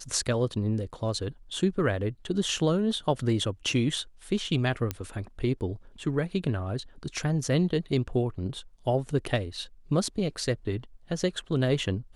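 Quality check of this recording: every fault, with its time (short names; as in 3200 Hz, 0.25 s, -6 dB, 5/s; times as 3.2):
4.91 pop -14 dBFS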